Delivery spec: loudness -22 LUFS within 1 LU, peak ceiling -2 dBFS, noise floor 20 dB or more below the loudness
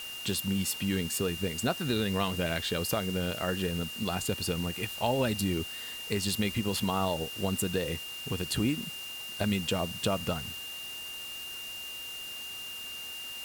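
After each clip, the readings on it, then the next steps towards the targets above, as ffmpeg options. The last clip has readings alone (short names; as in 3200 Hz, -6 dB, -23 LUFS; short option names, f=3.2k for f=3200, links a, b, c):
steady tone 2800 Hz; tone level -39 dBFS; noise floor -41 dBFS; noise floor target -52 dBFS; loudness -32.0 LUFS; peak -13.5 dBFS; loudness target -22.0 LUFS
-> -af "bandreject=f=2.8k:w=30"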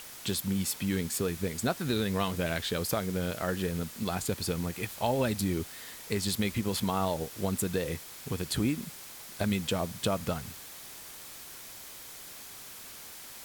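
steady tone none; noise floor -46 dBFS; noise floor target -52 dBFS
-> -af "afftdn=nr=6:nf=-46"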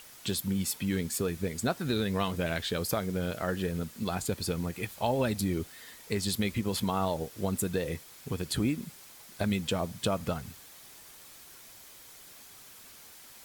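noise floor -52 dBFS; loudness -32.0 LUFS; peak -14.5 dBFS; loudness target -22.0 LUFS
-> -af "volume=10dB"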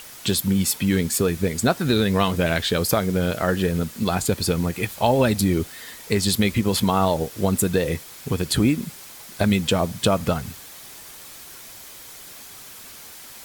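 loudness -22.0 LUFS; peak -4.5 dBFS; noise floor -42 dBFS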